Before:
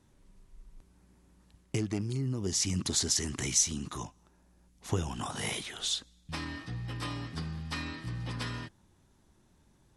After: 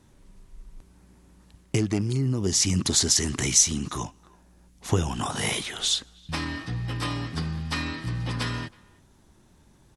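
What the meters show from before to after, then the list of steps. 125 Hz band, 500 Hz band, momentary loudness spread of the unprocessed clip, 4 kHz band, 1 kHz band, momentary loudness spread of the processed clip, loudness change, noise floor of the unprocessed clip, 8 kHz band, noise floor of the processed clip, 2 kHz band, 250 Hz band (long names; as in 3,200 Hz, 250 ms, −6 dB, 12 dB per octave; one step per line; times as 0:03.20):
+7.5 dB, +7.5 dB, 12 LU, +7.5 dB, +7.5 dB, 12 LU, +7.5 dB, −66 dBFS, +7.5 dB, −58 dBFS, +7.5 dB, +7.5 dB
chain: far-end echo of a speakerphone 320 ms, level −25 dB
level +7.5 dB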